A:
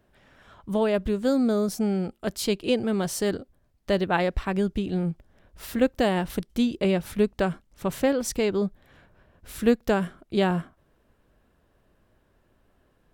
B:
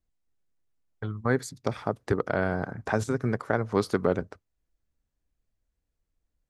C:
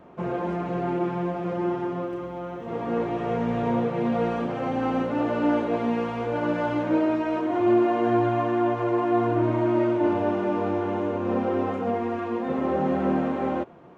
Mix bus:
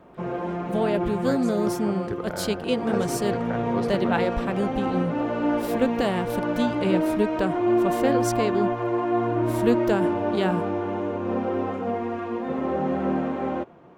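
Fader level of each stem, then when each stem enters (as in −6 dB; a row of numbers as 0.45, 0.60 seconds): −1.5, −7.5, −1.0 decibels; 0.00, 0.00, 0.00 seconds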